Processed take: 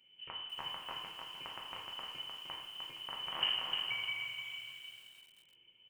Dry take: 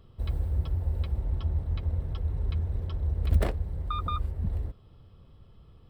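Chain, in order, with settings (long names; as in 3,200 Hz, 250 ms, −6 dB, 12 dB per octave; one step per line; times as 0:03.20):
loose part that buzzes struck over −21 dBFS, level −18 dBFS
four-pole ladder high-pass 440 Hz, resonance 65%
single-tap delay 466 ms −13 dB
coupled-rooms reverb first 0.83 s, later 2.8 s, DRR −2.5 dB
voice inversion scrambler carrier 3,500 Hz
feedback echo at a low word length 304 ms, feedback 35%, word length 10 bits, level −4 dB
level +1 dB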